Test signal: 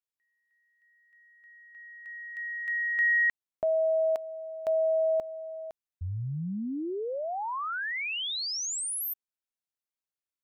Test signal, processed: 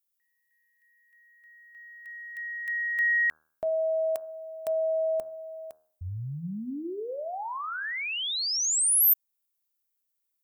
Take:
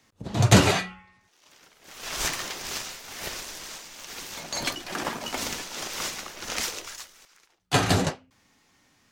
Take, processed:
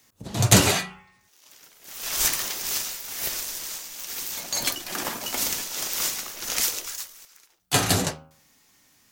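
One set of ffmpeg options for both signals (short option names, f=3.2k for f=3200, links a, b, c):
-af "aemphasis=mode=production:type=50fm,bandreject=f=78.25:t=h:w=4,bandreject=f=156.5:t=h:w=4,bandreject=f=234.75:t=h:w=4,bandreject=f=313:t=h:w=4,bandreject=f=391.25:t=h:w=4,bandreject=f=469.5:t=h:w=4,bandreject=f=547.75:t=h:w=4,bandreject=f=626:t=h:w=4,bandreject=f=704.25:t=h:w=4,bandreject=f=782.5:t=h:w=4,bandreject=f=860.75:t=h:w=4,bandreject=f=939:t=h:w=4,bandreject=f=1.01725k:t=h:w=4,bandreject=f=1.0955k:t=h:w=4,bandreject=f=1.17375k:t=h:w=4,bandreject=f=1.252k:t=h:w=4,bandreject=f=1.33025k:t=h:w=4,bandreject=f=1.4085k:t=h:w=4,bandreject=f=1.48675k:t=h:w=4,bandreject=f=1.565k:t=h:w=4,bandreject=f=1.64325k:t=h:w=4,volume=-1dB"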